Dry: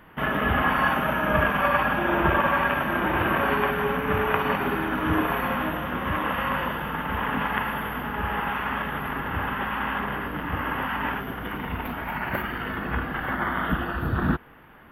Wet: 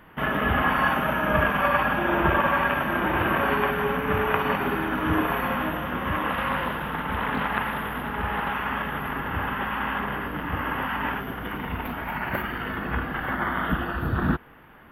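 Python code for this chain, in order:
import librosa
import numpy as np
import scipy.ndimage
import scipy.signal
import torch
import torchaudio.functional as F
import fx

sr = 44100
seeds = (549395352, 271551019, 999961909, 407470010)

y = fx.doppler_dist(x, sr, depth_ms=0.33, at=(6.3, 8.53))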